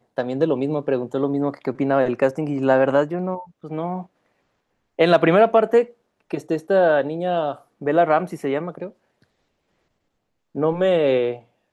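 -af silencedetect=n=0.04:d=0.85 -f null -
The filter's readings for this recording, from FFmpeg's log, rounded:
silence_start: 4.01
silence_end: 4.99 | silence_duration: 0.98
silence_start: 8.87
silence_end: 10.55 | silence_duration: 1.68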